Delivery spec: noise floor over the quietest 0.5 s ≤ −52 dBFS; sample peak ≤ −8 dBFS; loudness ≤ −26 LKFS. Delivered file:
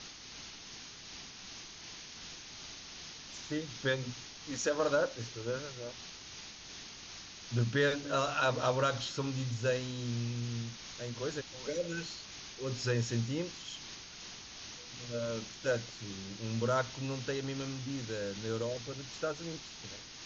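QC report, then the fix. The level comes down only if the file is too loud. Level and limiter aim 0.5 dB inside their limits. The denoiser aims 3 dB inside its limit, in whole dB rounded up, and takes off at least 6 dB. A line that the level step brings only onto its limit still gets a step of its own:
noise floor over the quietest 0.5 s −49 dBFS: out of spec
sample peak −17.5 dBFS: in spec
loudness −37.0 LKFS: in spec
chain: broadband denoise 6 dB, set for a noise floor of −49 dBFS

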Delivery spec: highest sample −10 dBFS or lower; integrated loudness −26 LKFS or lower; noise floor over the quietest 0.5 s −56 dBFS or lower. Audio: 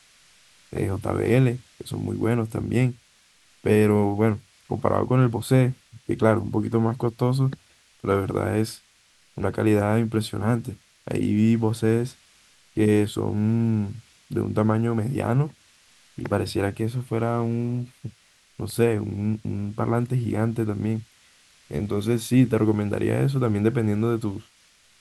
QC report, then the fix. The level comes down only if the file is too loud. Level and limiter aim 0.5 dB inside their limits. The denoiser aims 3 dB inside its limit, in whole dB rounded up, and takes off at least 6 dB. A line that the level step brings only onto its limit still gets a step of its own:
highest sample −4.0 dBFS: out of spec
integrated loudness −24.0 LKFS: out of spec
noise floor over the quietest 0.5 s −59 dBFS: in spec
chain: level −2.5 dB
brickwall limiter −10.5 dBFS

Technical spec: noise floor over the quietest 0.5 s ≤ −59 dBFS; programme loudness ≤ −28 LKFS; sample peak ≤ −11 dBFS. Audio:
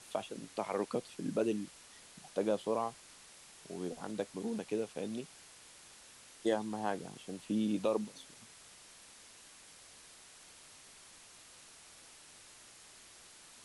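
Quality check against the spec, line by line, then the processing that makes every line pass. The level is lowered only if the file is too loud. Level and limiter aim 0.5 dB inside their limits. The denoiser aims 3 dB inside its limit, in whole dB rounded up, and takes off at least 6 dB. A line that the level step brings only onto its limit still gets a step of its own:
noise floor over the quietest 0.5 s −57 dBFS: out of spec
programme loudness −37.5 LKFS: in spec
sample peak −19.5 dBFS: in spec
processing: broadband denoise 6 dB, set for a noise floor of −57 dBFS

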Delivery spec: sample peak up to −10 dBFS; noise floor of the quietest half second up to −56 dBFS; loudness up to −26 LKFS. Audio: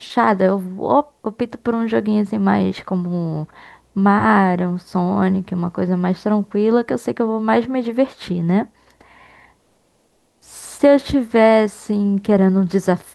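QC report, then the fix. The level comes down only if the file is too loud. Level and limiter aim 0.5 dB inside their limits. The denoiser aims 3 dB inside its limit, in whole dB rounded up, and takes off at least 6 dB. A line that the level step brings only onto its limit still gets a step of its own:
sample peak −2.5 dBFS: out of spec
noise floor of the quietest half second −61 dBFS: in spec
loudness −18.0 LKFS: out of spec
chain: level −8.5 dB

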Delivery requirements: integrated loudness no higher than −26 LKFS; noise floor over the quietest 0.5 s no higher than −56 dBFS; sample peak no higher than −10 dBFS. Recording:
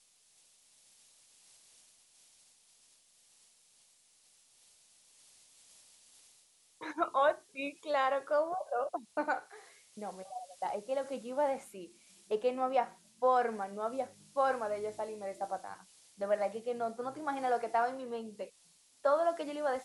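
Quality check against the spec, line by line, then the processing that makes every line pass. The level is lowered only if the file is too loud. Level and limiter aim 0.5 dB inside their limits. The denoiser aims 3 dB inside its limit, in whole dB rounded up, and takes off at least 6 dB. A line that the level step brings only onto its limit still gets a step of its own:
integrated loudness −34.5 LKFS: in spec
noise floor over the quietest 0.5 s −67 dBFS: in spec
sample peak −17.5 dBFS: in spec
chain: no processing needed

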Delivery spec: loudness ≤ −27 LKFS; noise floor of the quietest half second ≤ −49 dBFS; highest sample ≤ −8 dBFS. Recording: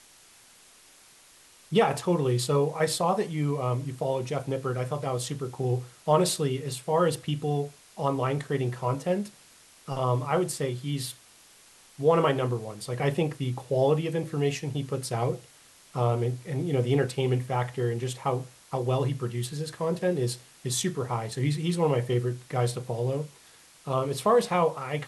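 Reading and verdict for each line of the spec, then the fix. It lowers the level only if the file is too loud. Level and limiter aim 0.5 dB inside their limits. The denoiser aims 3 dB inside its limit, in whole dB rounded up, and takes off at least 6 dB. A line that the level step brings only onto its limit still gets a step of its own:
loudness −28.0 LKFS: in spec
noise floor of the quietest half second −55 dBFS: in spec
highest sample −9.5 dBFS: in spec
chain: no processing needed

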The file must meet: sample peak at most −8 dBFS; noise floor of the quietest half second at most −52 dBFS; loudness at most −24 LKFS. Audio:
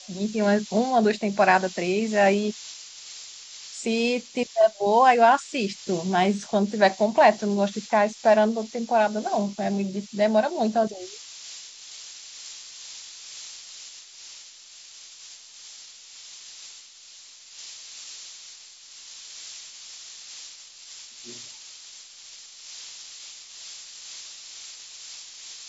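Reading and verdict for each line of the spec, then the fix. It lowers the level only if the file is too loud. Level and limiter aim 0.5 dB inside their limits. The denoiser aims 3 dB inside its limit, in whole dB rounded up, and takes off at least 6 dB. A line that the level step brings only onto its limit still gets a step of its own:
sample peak −5.0 dBFS: out of spec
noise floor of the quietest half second −48 dBFS: out of spec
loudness −22.5 LKFS: out of spec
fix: broadband denoise 6 dB, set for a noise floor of −48 dBFS
level −2 dB
brickwall limiter −8.5 dBFS

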